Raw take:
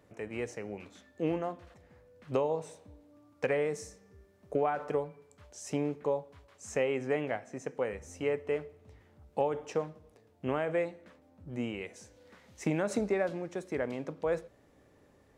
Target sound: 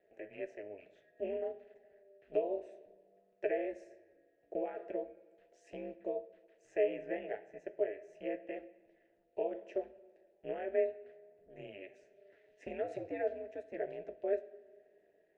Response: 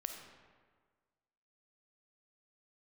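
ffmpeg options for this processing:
-filter_complex "[0:a]asplit=3[a][b][c];[a]bandpass=f=530:t=q:w=8,volume=0dB[d];[b]bandpass=f=1.84k:t=q:w=8,volume=-6dB[e];[c]bandpass=f=2.48k:t=q:w=8,volume=-9dB[f];[d][e][f]amix=inputs=3:normalize=0,flanger=delay=6.2:depth=5:regen=-66:speed=0.49:shape=triangular,aeval=exprs='val(0)*sin(2*PI*100*n/s)':c=same,asplit=2[g][h];[1:a]atrim=start_sample=2205[i];[h][i]afir=irnorm=-1:irlink=0,volume=-9dB[j];[g][j]amix=inputs=2:normalize=0,volume=6dB"

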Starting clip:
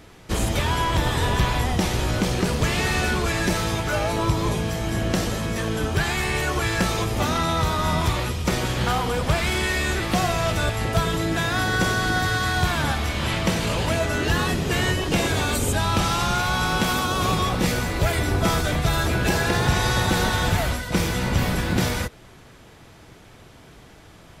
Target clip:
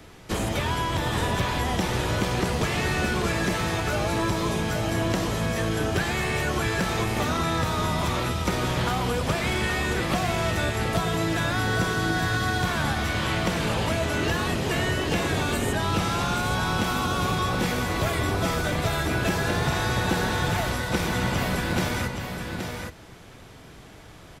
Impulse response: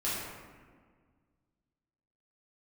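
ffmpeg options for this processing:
-filter_complex "[0:a]acrossover=split=82|370|2900[a][b][c][d];[a]acompressor=threshold=-39dB:ratio=4[e];[b]acompressor=threshold=-27dB:ratio=4[f];[c]acompressor=threshold=-27dB:ratio=4[g];[d]acompressor=threshold=-37dB:ratio=4[h];[e][f][g][h]amix=inputs=4:normalize=0,asplit=2[i][j];[j]aecho=0:1:823:0.501[k];[i][k]amix=inputs=2:normalize=0"

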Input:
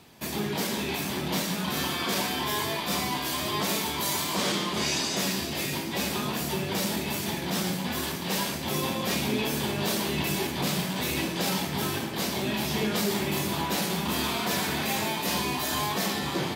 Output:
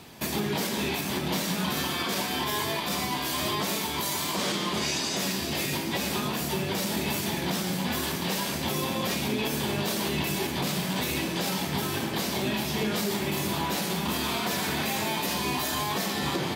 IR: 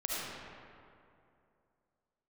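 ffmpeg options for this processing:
-af "alimiter=level_in=0.5dB:limit=-24dB:level=0:latency=1:release=367,volume=-0.5dB,volume=6dB"

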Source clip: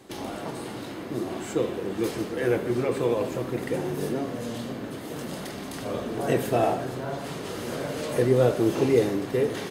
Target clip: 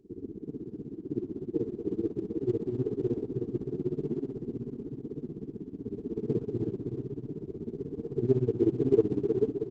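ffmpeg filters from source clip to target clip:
-filter_complex "[0:a]asettb=1/sr,asplit=3[a][b][c];[a]atrim=end=7.074[d];[b]atrim=start=7.07:end=7.64,asetpts=PTS-STARTPTS,afade=t=in:d=0.004:c=qsin,afade=t=out:st=0.566:d=0.004:c=qsin,highshelf=f=2.3k:t=q:w=1.5:g=-7[e];[c]atrim=start=7.636[f];[d][e]acrossfade=d=0.004:c1=hsin:c2=qsin[g];[g][f]acrossfade=d=0.004:c1=qsin:c2=hsin,afftfilt=real='re*(1-between(b*sr/4096,470,9200))':imag='im*(1-between(b*sr/4096,470,9200))':win_size=4096:overlap=0.75,tremolo=f=16:d=0.86,aecho=1:1:315|630|945|1260|1575:0.473|0.213|0.0958|0.0431|0.0194" -ar 48000 -c:a libopus -b:a 12k

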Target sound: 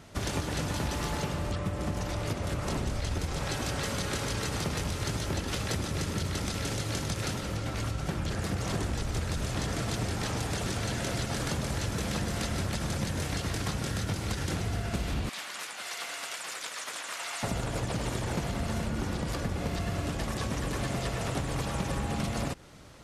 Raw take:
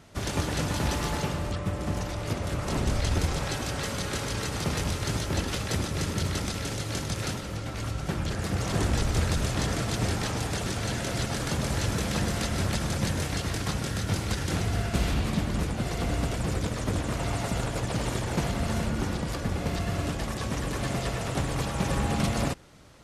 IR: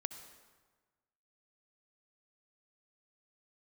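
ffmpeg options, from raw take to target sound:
-filter_complex "[0:a]asettb=1/sr,asplit=3[a][b][c];[a]atrim=end=15.294[d];[b]atrim=start=15.29:end=17.43,asetpts=PTS-STARTPTS,afade=t=in:d=0.004:c=qsin,afade=t=out:st=2.136:d=0.004:c=qsin,highpass=1.3k[e];[c]atrim=start=17.426[f];[d][e]acrossfade=d=0.004:c1=hsin:c2=qsin[g];[g][f]acrossfade=d=0.004:c1=qsin:c2=hsin,acompressor=threshold=-30dB:ratio=6,volume=2dB"

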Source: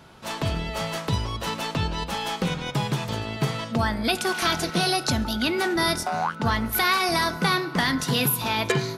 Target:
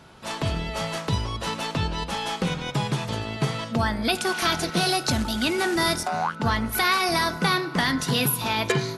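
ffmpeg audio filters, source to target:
-filter_complex "[0:a]asettb=1/sr,asplit=3[a][b][c];[a]atrim=end=4.774[d];[b]atrim=start=4.77:end=6.08,asetpts=PTS-STARTPTS,afade=t=in:d=0.004:c=qsin,afade=t=out:st=1.306:d=0.004:c=qsin,acrusher=bits=3:mode=log:mix=0:aa=0.000001[e];[c]atrim=start=6.076[f];[d][e]acrossfade=d=0.004:c1=hsin:c2=qsin[g];[g][f]acrossfade=d=0.004:c1=qsin:c2=hsin" -ar 32000 -c:a ac3 -b:a 64k

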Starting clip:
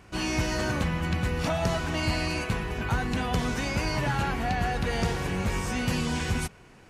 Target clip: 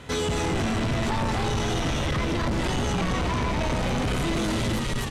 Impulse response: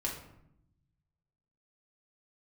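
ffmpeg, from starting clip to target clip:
-filter_complex "[0:a]asplit=8[a][b][c][d][e][f][g][h];[b]adelay=343,afreqshift=-70,volume=-4dB[i];[c]adelay=686,afreqshift=-140,volume=-9.7dB[j];[d]adelay=1029,afreqshift=-210,volume=-15.4dB[k];[e]adelay=1372,afreqshift=-280,volume=-21dB[l];[f]adelay=1715,afreqshift=-350,volume=-26.7dB[m];[g]adelay=2058,afreqshift=-420,volume=-32.4dB[n];[h]adelay=2401,afreqshift=-490,volume=-38.1dB[o];[a][i][j][k][l][m][n][o]amix=inputs=8:normalize=0,asetrate=59535,aresample=44100,acrossover=split=790[p][q];[q]alimiter=level_in=2.5dB:limit=-24dB:level=0:latency=1:release=233,volume=-2.5dB[r];[p][r]amix=inputs=2:normalize=0,asoftclip=type=tanh:threshold=-31dB,lowpass=9.1k,volume=8.5dB"

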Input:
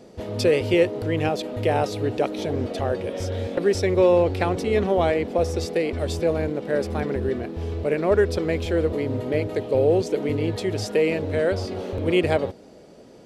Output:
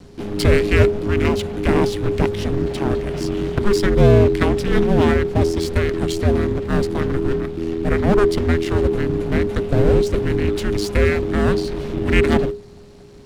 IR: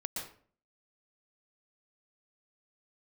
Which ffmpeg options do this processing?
-af "aeval=exprs='max(val(0),0)':c=same,afreqshift=-410,volume=8dB"

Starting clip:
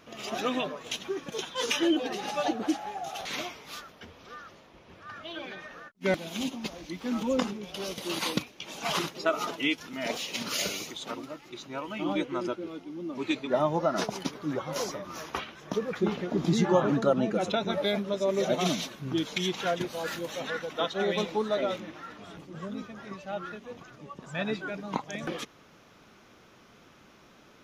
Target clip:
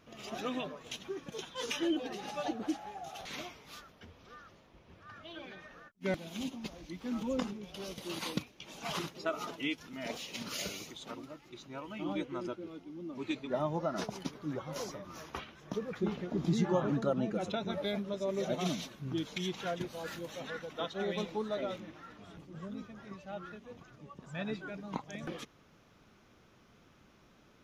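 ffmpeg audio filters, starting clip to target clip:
-af "lowshelf=f=160:g=9.5,volume=-8.5dB"

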